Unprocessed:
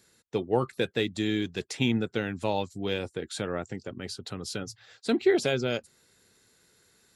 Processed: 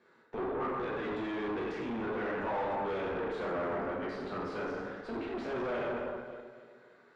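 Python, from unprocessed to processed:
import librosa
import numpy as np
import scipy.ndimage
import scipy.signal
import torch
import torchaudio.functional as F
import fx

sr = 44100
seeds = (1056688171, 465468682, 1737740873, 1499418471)

y = fx.over_compress(x, sr, threshold_db=-28.0, ratio=-0.5)
y = scipy.signal.sosfilt(scipy.signal.butter(2, 250.0, 'highpass', fs=sr, output='sos'), y)
y = fx.echo_feedback(y, sr, ms=284, feedback_pct=47, wet_db=-20.0)
y = fx.rev_plate(y, sr, seeds[0], rt60_s=1.4, hf_ratio=0.6, predelay_ms=0, drr_db=-6.0)
y = fx.tube_stage(y, sr, drive_db=34.0, bias=0.65)
y = scipy.signal.sosfilt(scipy.signal.butter(2, 1600.0, 'lowpass', fs=sr, output='sos'), y)
y = fx.peak_eq(y, sr, hz=1100.0, db=5.0, octaves=2.0)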